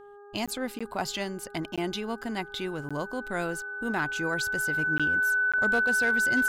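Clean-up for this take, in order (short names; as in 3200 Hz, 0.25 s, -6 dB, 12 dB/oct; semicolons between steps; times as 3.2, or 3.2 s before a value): clip repair -18 dBFS; de-hum 407.6 Hz, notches 4; notch 1500 Hz, Q 30; interpolate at 0.46/0.79/1.76/2.89/4.98/5.52, 16 ms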